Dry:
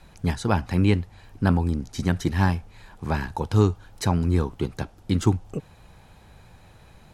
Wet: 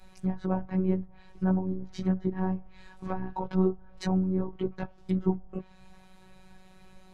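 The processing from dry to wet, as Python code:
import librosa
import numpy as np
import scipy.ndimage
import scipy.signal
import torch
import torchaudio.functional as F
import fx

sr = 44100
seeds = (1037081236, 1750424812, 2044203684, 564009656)

y = fx.chorus_voices(x, sr, voices=6, hz=0.56, base_ms=17, depth_ms=1.8, mix_pct=45)
y = fx.env_lowpass_down(y, sr, base_hz=750.0, full_db=-24.0)
y = fx.robotise(y, sr, hz=187.0)
y = y * librosa.db_to_amplitude(1.0)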